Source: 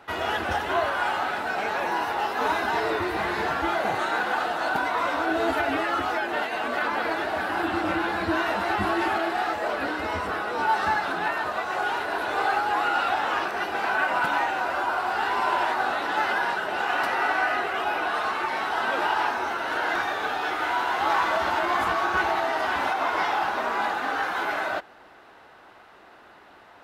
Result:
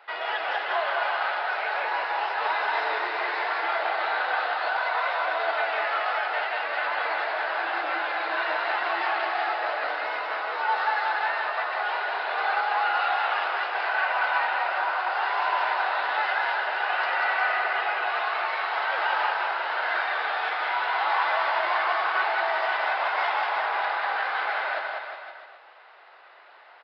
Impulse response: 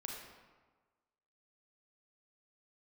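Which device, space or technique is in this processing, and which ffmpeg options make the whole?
musical greeting card: -filter_complex "[0:a]asettb=1/sr,asplit=3[a][b][c];[a]atrim=end=4.734[d];[b]atrim=start=4.73:end=6.31,asetpts=PTS-STARTPTS,afade=t=in:d=0.004:c=qsin,afade=t=out:st=1.576:d=0.004:c=qsin,highpass=f=390:w=0.5412,highpass=f=390:w=1.3066[e];[c]atrim=start=6.306[f];[d][e]acrossfade=d=0.004:c1=hsin:c2=qsin[g];[g][f]acrossfade=d=0.004:c1=qsin:c2=hsin,aresample=11025,aresample=44100,highpass=f=520:w=0.5412,highpass=f=520:w=1.3066,equalizer=f=2.1k:t=o:w=0.59:g=4,aecho=1:1:190|361|514.9|653.4|778.1:0.631|0.398|0.251|0.158|0.1,volume=-3dB"

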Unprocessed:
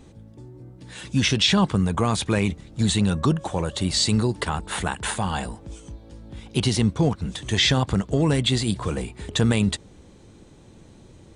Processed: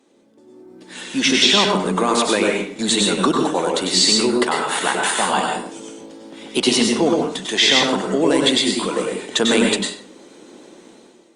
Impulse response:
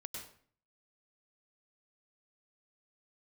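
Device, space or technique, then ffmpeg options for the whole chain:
far-field microphone of a smart speaker: -filter_complex "[0:a]highpass=f=260:w=0.5412,highpass=f=260:w=1.3066[a];[1:a]atrim=start_sample=2205[b];[a][b]afir=irnorm=-1:irlink=0,highpass=100,dynaudnorm=f=260:g=5:m=13.5dB" -ar 48000 -c:a libopus -b:a 48k

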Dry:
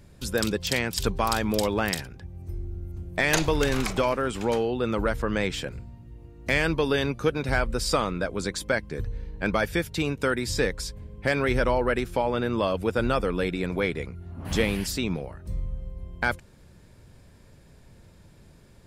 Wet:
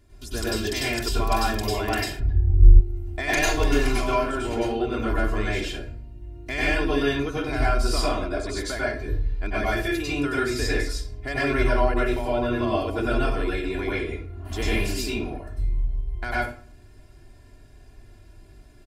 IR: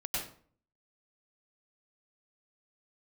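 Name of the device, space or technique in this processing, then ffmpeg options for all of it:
microphone above a desk: -filter_complex "[0:a]aecho=1:1:2.9:0.9[a];[1:a]atrim=start_sample=2205[b];[a][b]afir=irnorm=-1:irlink=0,asplit=3[c][d][e];[c]afade=t=out:st=2.19:d=0.02[f];[d]aemphasis=mode=reproduction:type=riaa,afade=t=in:st=2.19:d=0.02,afade=t=out:st=2.79:d=0.02[g];[e]afade=t=in:st=2.79:d=0.02[h];[f][g][h]amix=inputs=3:normalize=0,volume=-5.5dB"

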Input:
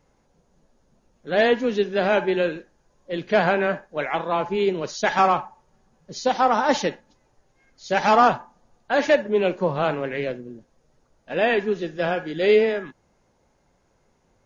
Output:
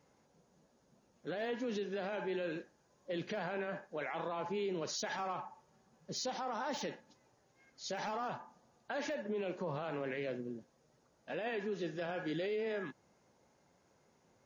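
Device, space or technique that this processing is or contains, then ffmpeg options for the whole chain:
broadcast voice chain: -af "highpass=110,deesser=0.75,acompressor=threshold=-25dB:ratio=5,equalizer=f=5.4k:t=o:w=0.77:g=2,alimiter=level_in=2dB:limit=-24dB:level=0:latency=1:release=24,volume=-2dB,volume=-4.5dB"

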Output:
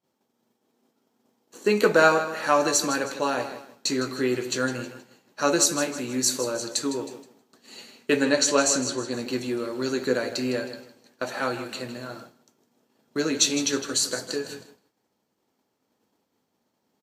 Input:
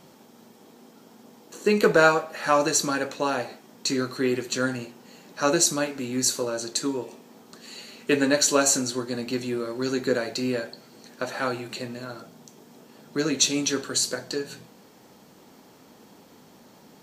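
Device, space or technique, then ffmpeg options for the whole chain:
low shelf boost with a cut just above: -filter_complex "[0:a]asettb=1/sr,asplit=3[a][b][c];[a]atrim=end=8.244[d];[b]atrim=start=8.24:end=9.12,asetpts=PTS-STARTPTS,afade=t=in:d=0.004:c=qsin,afade=t=out:st=0.876:d=0.004:c=qsin,lowpass=7.9k[e];[c]atrim=start=9.116[f];[d][e]acrossfade=d=0.004:c1=hsin:c2=qsin[g];[g][f]acrossfade=d=0.004:c1=qsin:c2=hsin,lowshelf=f=68:g=7.5,equalizer=f=160:t=o:w=0.84:g=-5,aecho=1:1:158|316|474|632:0.237|0.0996|0.0418|0.0176,agate=range=-33dB:threshold=-38dB:ratio=3:detection=peak,highpass=66"

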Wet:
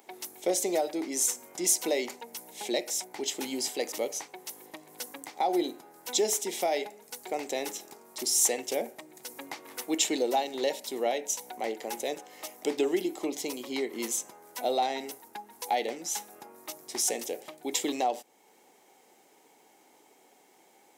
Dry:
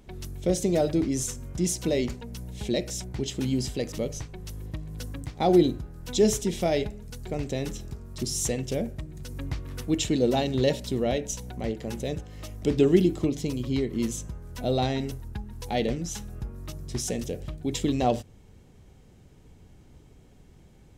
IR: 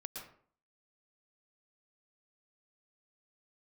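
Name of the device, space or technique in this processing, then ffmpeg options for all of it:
laptop speaker: -af "highpass=f=310:w=0.5412,highpass=f=310:w=1.3066,equalizer=f=830:t=o:w=0.55:g=12,equalizer=f=2.1k:t=o:w=0.33:g=6.5,alimiter=limit=-15.5dB:level=0:latency=1:release=456,aemphasis=mode=production:type=50kf,volume=-2.5dB"

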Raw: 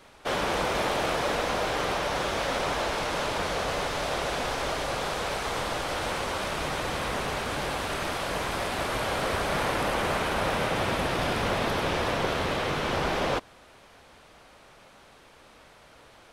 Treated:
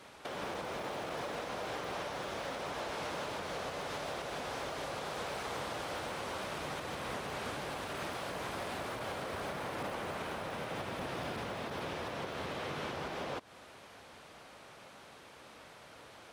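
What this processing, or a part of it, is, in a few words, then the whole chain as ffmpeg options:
podcast mastering chain: -af "highpass=86,deesser=0.95,acompressor=threshold=-33dB:ratio=6,alimiter=level_in=5dB:limit=-24dB:level=0:latency=1:release=313,volume=-5dB" -ar 44100 -c:a libmp3lame -b:a 128k

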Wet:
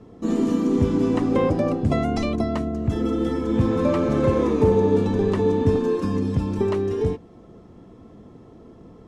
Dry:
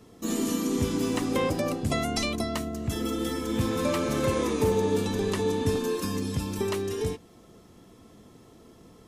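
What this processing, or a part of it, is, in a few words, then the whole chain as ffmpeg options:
through cloth: -af "lowpass=7.7k,highshelf=f=2k:g=-17.5,volume=7.5dB"

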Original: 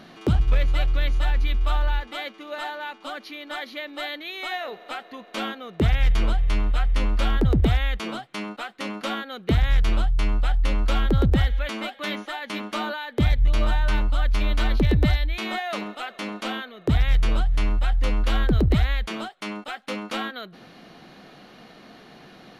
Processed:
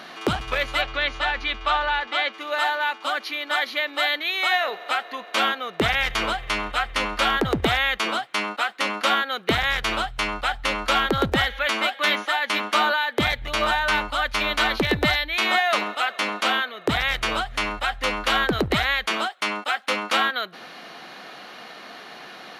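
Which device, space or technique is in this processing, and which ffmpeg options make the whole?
filter by subtraction: -filter_complex "[0:a]asplit=2[a][b];[b]lowpass=1.2k,volume=-1[c];[a][c]amix=inputs=2:normalize=0,asettb=1/sr,asplit=3[d][e][f];[d]atrim=end=0.814[g];[e]atrim=start=0.81:end=2.33,asetpts=PTS-STARTPTS,afade=t=in:d=0.004:c=qsin,afade=t=out:st=1.516:d=0.004:c=qsin,lowpass=5.1k[h];[f]atrim=start=2.326[i];[g][h]acrossfade=d=0.004:c1=hsin:c2=qsin[j];[j][i]acrossfade=d=0.004:c1=qsin:c2=hsin,volume=8.5dB"

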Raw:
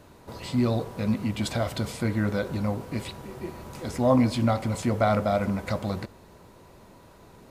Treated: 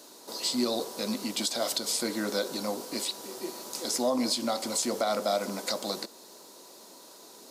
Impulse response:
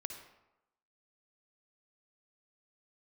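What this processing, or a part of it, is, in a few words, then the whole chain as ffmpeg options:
over-bright horn tweeter: -af "highpass=f=260:w=0.5412,highpass=f=260:w=1.3066,highshelf=f=3.3k:t=q:w=1.5:g=12,alimiter=limit=-17.5dB:level=0:latency=1:release=197"

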